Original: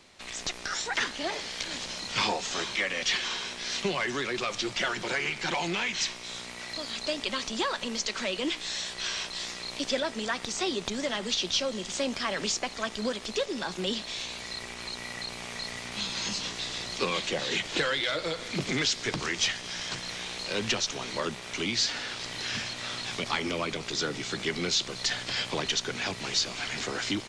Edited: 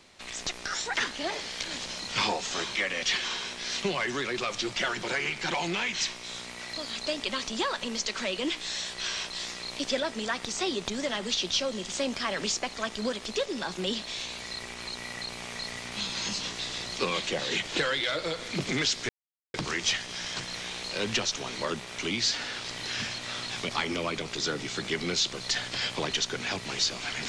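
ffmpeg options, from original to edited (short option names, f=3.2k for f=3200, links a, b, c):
-filter_complex "[0:a]asplit=2[a][b];[a]atrim=end=19.09,asetpts=PTS-STARTPTS,afade=t=out:st=19.086:d=0.004:c=hsin,apad=pad_dur=0.45[c];[b]atrim=start=19.09,asetpts=PTS-STARTPTS,afade=t=in:d=0.004:c=hsin[d];[c][d]concat=n=2:v=0:a=1"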